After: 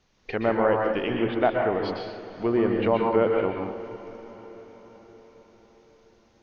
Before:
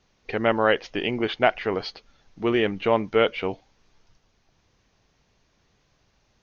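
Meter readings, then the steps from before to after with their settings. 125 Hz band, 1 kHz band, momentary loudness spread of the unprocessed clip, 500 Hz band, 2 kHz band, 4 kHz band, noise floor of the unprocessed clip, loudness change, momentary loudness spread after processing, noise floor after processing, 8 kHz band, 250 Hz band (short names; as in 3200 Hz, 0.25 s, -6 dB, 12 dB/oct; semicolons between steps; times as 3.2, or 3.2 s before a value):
+1.5 dB, -0.5 dB, 11 LU, +0.5 dB, -5.0 dB, -9.0 dB, -67 dBFS, -0.5 dB, 18 LU, -61 dBFS, n/a, +1.5 dB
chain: treble ducked by the level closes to 1100 Hz, closed at -20 dBFS; diffused feedback echo 0.474 s, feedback 57%, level -16 dB; plate-style reverb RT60 0.72 s, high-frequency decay 0.75×, pre-delay 0.11 s, DRR 1 dB; gain -1.5 dB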